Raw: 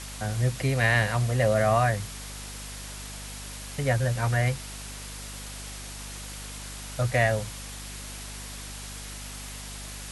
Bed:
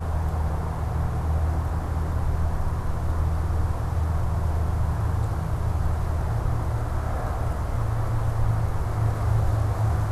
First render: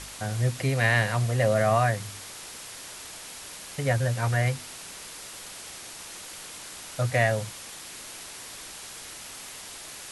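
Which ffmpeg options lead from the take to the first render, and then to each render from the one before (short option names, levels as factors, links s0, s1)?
-af "bandreject=f=50:t=h:w=4,bandreject=f=100:t=h:w=4,bandreject=f=150:t=h:w=4,bandreject=f=200:t=h:w=4,bandreject=f=250:t=h:w=4"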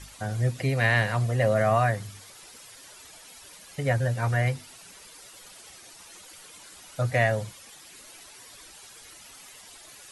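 -af "afftdn=nr=11:nf=-42"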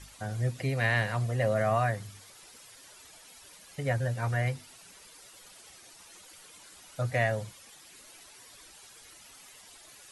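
-af "volume=0.596"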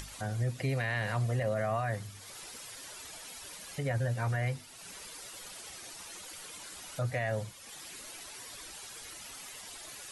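-af "acompressor=mode=upward:threshold=0.0126:ratio=2.5,alimiter=limit=0.0708:level=0:latency=1"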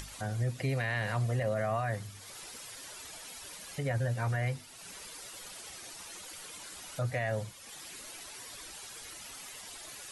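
-af anull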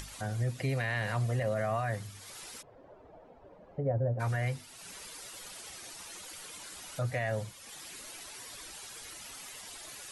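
-filter_complex "[0:a]asplit=3[s0][s1][s2];[s0]afade=t=out:st=2.61:d=0.02[s3];[s1]lowpass=f=600:t=q:w=1.7,afade=t=in:st=2.61:d=0.02,afade=t=out:st=4.19:d=0.02[s4];[s2]afade=t=in:st=4.19:d=0.02[s5];[s3][s4][s5]amix=inputs=3:normalize=0"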